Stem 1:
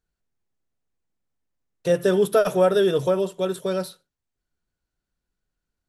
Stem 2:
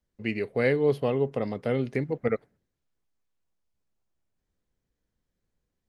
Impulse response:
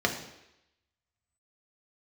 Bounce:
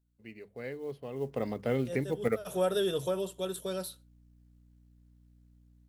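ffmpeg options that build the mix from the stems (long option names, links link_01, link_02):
-filter_complex "[0:a]aexciter=amount=1.2:drive=8.7:freq=2900,volume=-13.5dB[link_01];[1:a]bandreject=frequency=50:width_type=h:width=6,bandreject=frequency=100:width_type=h:width=6,bandreject=frequency=150:width_type=h:width=6,bandreject=frequency=200:width_type=h:width=6,aeval=exprs='val(0)+0.00158*(sin(2*PI*60*n/s)+sin(2*PI*2*60*n/s)/2+sin(2*PI*3*60*n/s)/3+sin(2*PI*4*60*n/s)/4+sin(2*PI*5*60*n/s)/5)':channel_layout=same,acrusher=bits=8:mode=log:mix=0:aa=0.000001,volume=-6dB,afade=type=in:start_time=1.1:duration=0.34:silence=0.237137,asplit=2[link_02][link_03];[link_03]apad=whole_len=259318[link_04];[link_01][link_04]sidechaincompress=threshold=-50dB:ratio=5:attack=8:release=129[link_05];[link_05][link_02]amix=inputs=2:normalize=0,dynaudnorm=framelen=390:gausssize=3:maxgain=3dB"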